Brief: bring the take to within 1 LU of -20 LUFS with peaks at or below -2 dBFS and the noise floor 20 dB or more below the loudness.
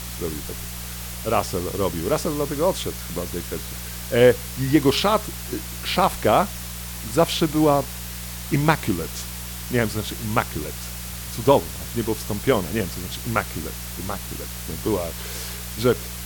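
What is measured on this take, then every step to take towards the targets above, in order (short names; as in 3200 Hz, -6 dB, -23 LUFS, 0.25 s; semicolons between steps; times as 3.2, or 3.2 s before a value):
hum 60 Hz; harmonics up to 180 Hz; hum level -33 dBFS; noise floor -33 dBFS; noise floor target -44 dBFS; loudness -24.0 LUFS; peak -1.5 dBFS; loudness target -20.0 LUFS
-> de-hum 60 Hz, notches 3; denoiser 11 dB, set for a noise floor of -33 dBFS; gain +4 dB; limiter -2 dBFS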